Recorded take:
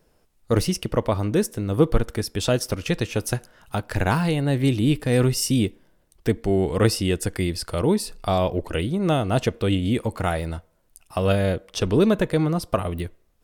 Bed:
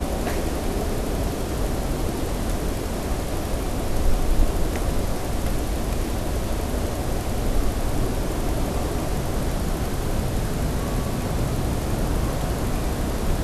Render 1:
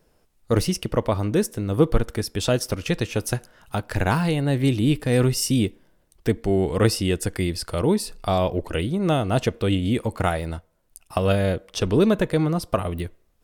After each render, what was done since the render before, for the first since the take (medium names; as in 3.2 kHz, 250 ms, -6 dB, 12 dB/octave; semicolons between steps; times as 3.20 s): 10.16–11.18 s: transient shaper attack +4 dB, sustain -3 dB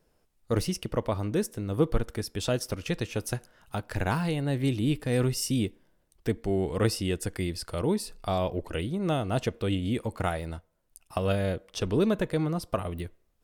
trim -6.5 dB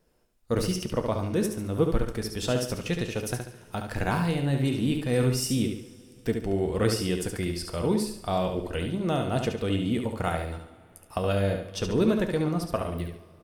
feedback delay 71 ms, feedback 37%, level -6 dB; two-slope reverb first 0.26 s, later 2.8 s, from -18 dB, DRR 9 dB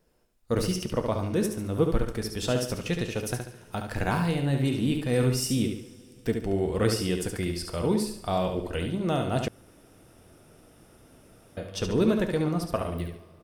9.48–11.57 s: room tone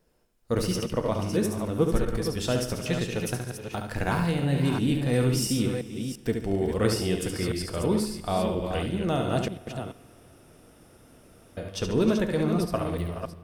chunks repeated in reverse 342 ms, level -7 dB; spring tank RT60 2.9 s, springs 47 ms, chirp 80 ms, DRR 19.5 dB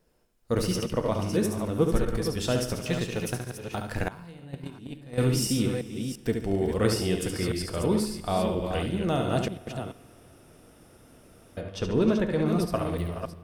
2.79–3.57 s: companding laws mixed up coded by A; 4.08–5.18 s: gate -21 dBFS, range -19 dB; 11.61–12.46 s: low-pass 3.2 kHz 6 dB/octave